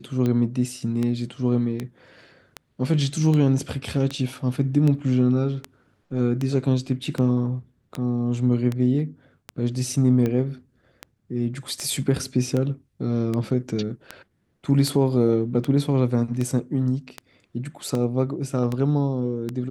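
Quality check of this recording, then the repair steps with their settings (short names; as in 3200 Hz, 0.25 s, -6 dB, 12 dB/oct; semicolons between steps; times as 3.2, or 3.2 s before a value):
tick 78 rpm -14 dBFS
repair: de-click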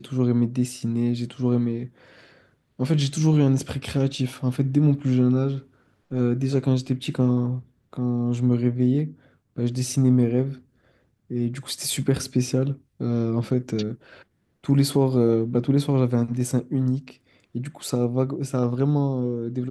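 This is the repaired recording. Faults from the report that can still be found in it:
none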